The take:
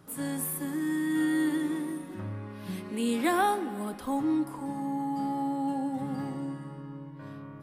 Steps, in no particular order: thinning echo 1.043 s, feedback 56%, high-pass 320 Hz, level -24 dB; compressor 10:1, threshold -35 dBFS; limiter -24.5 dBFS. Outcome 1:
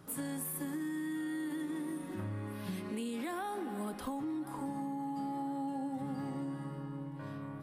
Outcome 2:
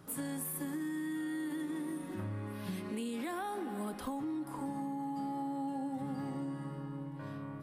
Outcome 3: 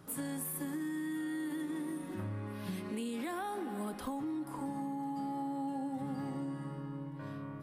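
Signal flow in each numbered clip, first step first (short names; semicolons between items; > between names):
thinning echo > limiter > compressor; limiter > thinning echo > compressor; limiter > compressor > thinning echo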